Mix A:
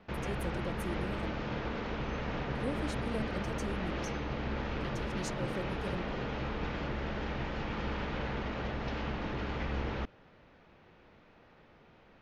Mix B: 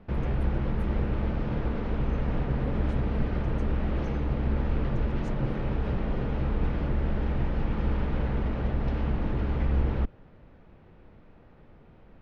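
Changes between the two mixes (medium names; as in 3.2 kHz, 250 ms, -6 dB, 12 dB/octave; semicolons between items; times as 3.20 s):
speech -8.5 dB; master: add tilt EQ -3 dB/octave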